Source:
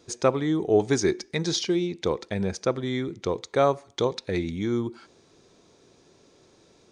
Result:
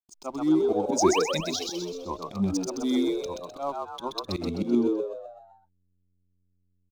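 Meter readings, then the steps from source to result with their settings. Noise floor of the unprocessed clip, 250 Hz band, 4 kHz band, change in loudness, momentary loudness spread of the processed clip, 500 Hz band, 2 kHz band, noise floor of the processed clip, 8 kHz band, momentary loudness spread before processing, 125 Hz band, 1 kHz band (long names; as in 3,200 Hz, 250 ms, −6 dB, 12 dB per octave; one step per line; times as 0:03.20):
−59 dBFS, +1.5 dB, −1.0 dB, −1.0 dB, 12 LU, −3.0 dB, −4.5 dB, −71 dBFS, +1.5 dB, 7 LU, −6.0 dB, 0.0 dB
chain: spectral dynamics exaggerated over time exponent 1.5
automatic gain control gain up to 7 dB
sound drawn into the spectrogram rise, 0:00.89–0:01.19, 240–3,300 Hz −25 dBFS
square-wave tremolo 0.5 Hz, depth 65%, duty 70%
slack as between gear wheels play −38.5 dBFS
phaser with its sweep stopped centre 470 Hz, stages 6
volume swells 120 ms
echo with shifted repeats 128 ms, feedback 47%, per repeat +90 Hz, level −3.5 dB
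level +1.5 dB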